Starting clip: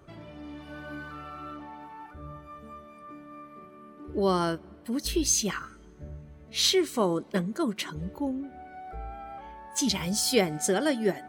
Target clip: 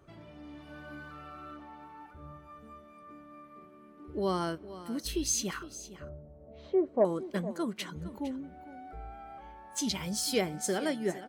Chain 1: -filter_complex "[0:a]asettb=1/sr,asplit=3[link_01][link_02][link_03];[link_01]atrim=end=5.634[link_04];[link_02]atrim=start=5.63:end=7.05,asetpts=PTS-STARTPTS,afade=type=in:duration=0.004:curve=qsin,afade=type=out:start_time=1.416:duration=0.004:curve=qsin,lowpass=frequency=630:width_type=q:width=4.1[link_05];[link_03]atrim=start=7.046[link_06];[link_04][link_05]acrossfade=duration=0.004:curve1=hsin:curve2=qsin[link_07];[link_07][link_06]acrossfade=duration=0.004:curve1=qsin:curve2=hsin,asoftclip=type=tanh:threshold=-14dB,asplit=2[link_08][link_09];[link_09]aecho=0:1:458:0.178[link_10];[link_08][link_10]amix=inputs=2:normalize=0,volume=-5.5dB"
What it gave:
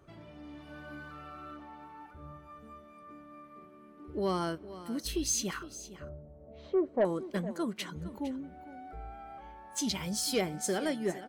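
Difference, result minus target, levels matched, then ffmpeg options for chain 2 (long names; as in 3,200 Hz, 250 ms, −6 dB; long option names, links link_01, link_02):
soft clipping: distortion +13 dB
-filter_complex "[0:a]asettb=1/sr,asplit=3[link_01][link_02][link_03];[link_01]atrim=end=5.634[link_04];[link_02]atrim=start=5.63:end=7.05,asetpts=PTS-STARTPTS,afade=type=in:duration=0.004:curve=qsin,afade=type=out:start_time=1.416:duration=0.004:curve=qsin,lowpass=frequency=630:width_type=q:width=4.1[link_05];[link_03]atrim=start=7.046[link_06];[link_04][link_05]acrossfade=duration=0.004:curve1=hsin:curve2=qsin[link_07];[link_07][link_06]acrossfade=duration=0.004:curve1=qsin:curve2=hsin,asoftclip=type=tanh:threshold=-5.5dB,asplit=2[link_08][link_09];[link_09]aecho=0:1:458:0.178[link_10];[link_08][link_10]amix=inputs=2:normalize=0,volume=-5.5dB"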